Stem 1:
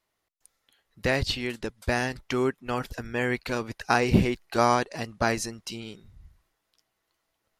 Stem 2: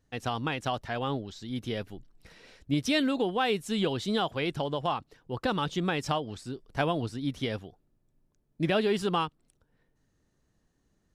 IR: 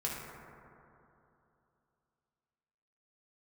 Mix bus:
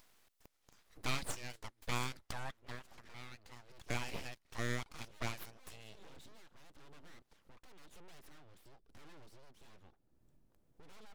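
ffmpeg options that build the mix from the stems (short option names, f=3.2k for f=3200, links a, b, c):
-filter_complex "[0:a]acrossover=split=490|3000[a][b][c];[a]acompressor=threshold=-43dB:ratio=2[d];[d][b][c]amix=inputs=3:normalize=0,volume=1dB,afade=t=out:st=2.6:d=0.23:silence=0.266073,afade=t=in:st=3.71:d=0.38:silence=0.398107,asplit=2[e][f];[1:a]alimiter=limit=-23dB:level=0:latency=1:release=183,asoftclip=type=tanh:threshold=-36.5dB,adynamicequalizer=threshold=0.00178:dfrequency=5000:dqfactor=0.7:tfrequency=5000:tqfactor=0.7:attack=5:release=100:ratio=0.375:range=2:mode=cutabove:tftype=highshelf,adelay=2200,volume=-14dB[g];[f]apad=whole_len=588671[h];[g][h]sidechaincompress=threshold=-51dB:ratio=12:attack=6.6:release=203[i];[e][i]amix=inputs=2:normalize=0,acompressor=mode=upward:threshold=-49dB:ratio=2.5,aeval=exprs='abs(val(0))':c=same,tremolo=f=0.99:d=0.35"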